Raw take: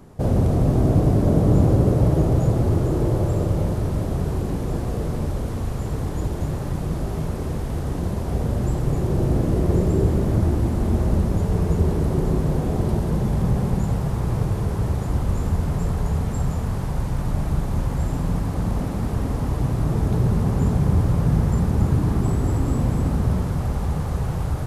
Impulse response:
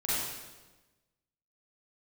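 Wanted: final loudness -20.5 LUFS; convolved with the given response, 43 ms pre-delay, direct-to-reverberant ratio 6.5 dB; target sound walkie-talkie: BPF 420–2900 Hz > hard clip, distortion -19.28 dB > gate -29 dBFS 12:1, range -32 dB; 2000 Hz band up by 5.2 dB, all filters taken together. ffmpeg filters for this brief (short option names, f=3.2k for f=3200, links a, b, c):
-filter_complex "[0:a]equalizer=f=2k:t=o:g=7.5,asplit=2[a][b];[1:a]atrim=start_sample=2205,adelay=43[c];[b][c]afir=irnorm=-1:irlink=0,volume=-14.5dB[d];[a][d]amix=inputs=2:normalize=0,highpass=420,lowpass=2.9k,asoftclip=type=hard:threshold=-22dB,agate=range=-32dB:threshold=-29dB:ratio=12,volume=10.5dB"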